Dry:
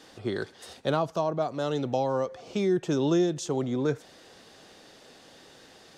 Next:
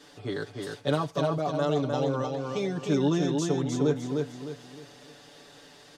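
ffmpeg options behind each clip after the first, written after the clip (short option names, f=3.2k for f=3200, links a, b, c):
-filter_complex "[0:a]aecho=1:1:6.9:0.88,asplit=2[a][b];[b]aecho=0:1:305|610|915|1220|1525:0.631|0.233|0.0864|0.032|0.0118[c];[a][c]amix=inputs=2:normalize=0,volume=-3dB"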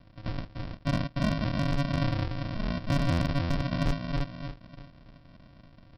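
-af "lowpass=4k,aresample=11025,acrusher=samples=26:mix=1:aa=0.000001,aresample=44100,asoftclip=type=hard:threshold=-20.5dB"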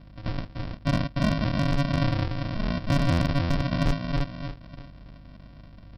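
-af "aeval=exprs='val(0)+0.00282*(sin(2*PI*50*n/s)+sin(2*PI*2*50*n/s)/2+sin(2*PI*3*50*n/s)/3+sin(2*PI*4*50*n/s)/4+sin(2*PI*5*50*n/s)/5)':c=same,volume=3.5dB"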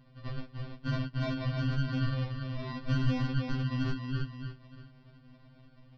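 -af "lowpass=f=5.3k:w=0.5412,lowpass=f=5.3k:w=1.3066,afftfilt=real='re*2.45*eq(mod(b,6),0)':imag='im*2.45*eq(mod(b,6),0)':win_size=2048:overlap=0.75,volume=-5.5dB"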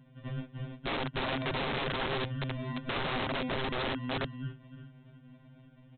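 -af "lowshelf=f=110:t=q:w=3:g=-12,bandreject=f=1.2k:w=6.5,aresample=8000,aeval=exprs='(mod(25.1*val(0)+1,2)-1)/25.1':c=same,aresample=44100"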